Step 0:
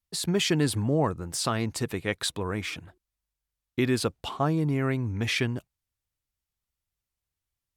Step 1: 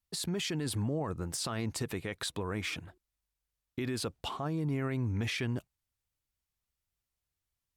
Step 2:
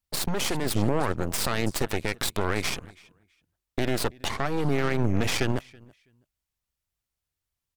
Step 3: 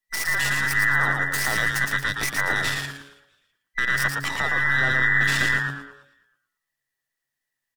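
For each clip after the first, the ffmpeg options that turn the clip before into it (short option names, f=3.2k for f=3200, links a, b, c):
-af "alimiter=level_in=1dB:limit=-24dB:level=0:latency=1:release=68,volume=-1dB,volume=-1dB"
-af "aecho=1:1:327|654:0.112|0.0247,aeval=exprs='0.0562*(cos(1*acos(clip(val(0)/0.0562,-1,1)))-cos(1*PI/2))+0.0282*(cos(2*acos(clip(val(0)/0.0562,-1,1)))-cos(2*PI/2))+0.01*(cos(3*acos(clip(val(0)/0.0562,-1,1)))-cos(3*PI/2))+0.00708*(cos(6*acos(clip(val(0)/0.0562,-1,1)))-cos(6*PI/2))':c=same,volume=8dB"
-filter_complex "[0:a]afftfilt=real='real(if(between(b,1,1012),(2*floor((b-1)/92)+1)*92-b,b),0)':imag='imag(if(between(b,1,1012),(2*floor((b-1)/92)+1)*92-b,b),0)*if(between(b,1,1012),-1,1)':win_size=2048:overlap=0.75,asplit=2[a][b];[b]asplit=4[c][d][e][f];[c]adelay=114,afreqshift=-140,volume=-4dB[g];[d]adelay=228,afreqshift=-280,volume=-13.9dB[h];[e]adelay=342,afreqshift=-420,volume=-23.8dB[i];[f]adelay=456,afreqshift=-560,volume=-33.7dB[j];[g][h][i][j]amix=inputs=4:normalize=0[k];[a][k]amix=inputs=2:normalize=0"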